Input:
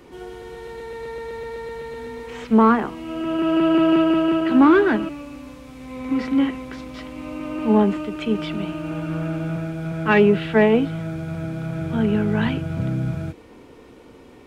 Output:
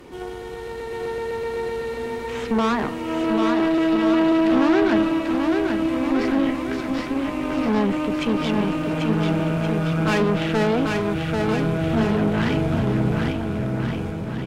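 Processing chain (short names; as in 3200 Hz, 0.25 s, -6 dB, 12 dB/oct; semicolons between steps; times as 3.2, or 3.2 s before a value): compressor 2.5:1, threshold -19 dBFS, peak gain reduction 6.5 dB; tube stage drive 25 dB, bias 0.7; bouncing-ball echo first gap 0.79 s, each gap 0.8×, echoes 5; gain +7 dB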